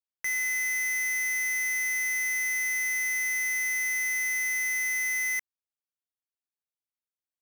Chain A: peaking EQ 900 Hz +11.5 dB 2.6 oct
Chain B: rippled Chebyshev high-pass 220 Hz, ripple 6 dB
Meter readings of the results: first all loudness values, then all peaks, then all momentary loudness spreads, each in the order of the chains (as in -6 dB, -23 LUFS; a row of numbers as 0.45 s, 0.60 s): -20.5 LUFS, -31.0 LUFS; -17.5 dBFS, -28.0 dBFS; 0 LU, 0 LU